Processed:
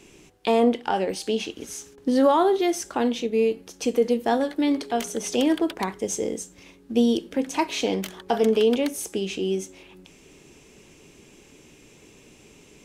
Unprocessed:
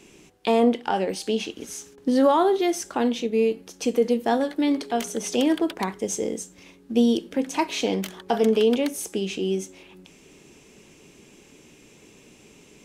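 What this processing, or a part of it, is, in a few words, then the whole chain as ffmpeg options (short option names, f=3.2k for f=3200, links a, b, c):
low shelf boost with a cut just above: -af "lowshelf=f=110:g=5,equalizer=f=200:t=o:w=0.62:g=-3"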